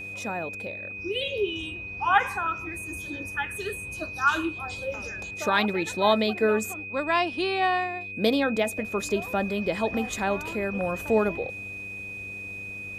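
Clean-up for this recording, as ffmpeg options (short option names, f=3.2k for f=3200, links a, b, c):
-af "bandreject=f=98.7:t=h:w=4,bandreject=f=197.4:t=h:w=4,bandreject=f=296.1:t=h:w=4,bandreject=f=394.8:t=h:w=4,bandreject=f=493.5:t=h:w=4,bandreject=f=2.5k:w=30"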